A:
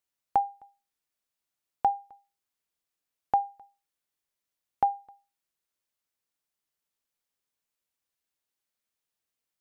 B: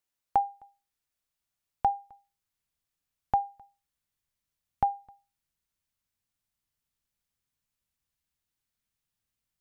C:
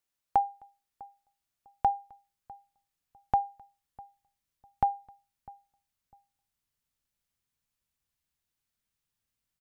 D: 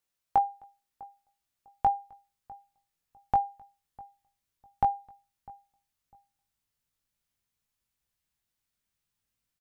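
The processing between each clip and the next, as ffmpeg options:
-af "asubboost=boost=5.5:cutoff=170"
-filter_complex "[0:a]asplit=2[a][b];[b]adelay=651,lowpass=f=1.1k:p=1,volume=-21dB,asplit=2[c][d];[d]adelay=651,lowpass=f=1.1k:p=1,volume=0.28[e];[a][c][e]amix=inputs=3:normalize=0"
-filter_complex "[0:a]asplit=2[a][b];[b]adelay=19,volume=-6dB[c];[a][c]amix=inputs=2:normalize=0"

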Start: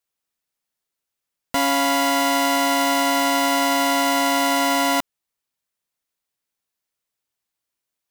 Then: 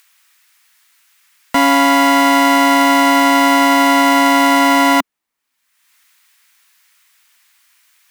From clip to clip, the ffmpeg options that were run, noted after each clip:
-filter_complex "[0:a]equalizer=f=125:t=o:w=1:g=-4,equalizer=f=250:t=o:w=1:g=9,equalizer=f=1k:t=o:w=1:g=6,equalizer=f=2k:t=o:w=1:g=6,acrossover=split=290|1200[a][b][c];[c]acompressor=mode=upward:threshold=-37dB:ratio=2.5[d];[a][b][d]amix=inputs=3:normalize=0,volume=2dB"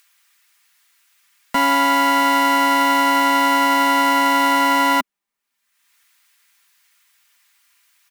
-af "aecho=1:1:5:0.48,volume=-5.5dB"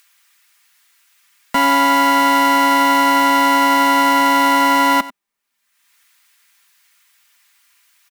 -filter_complex "[0:a]aecho=1:1:94:0.126,asplit=2[a][b];[b]acontrast=52,volume=0.5dB[c];[a][c]amix=inputs=2:normalize=0,volume=-7dB"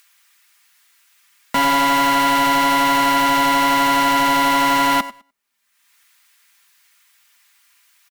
-af "asoftclip=type=hard:threshold=-13dB,aecho=1:1:103|206:0.0631|0.024"

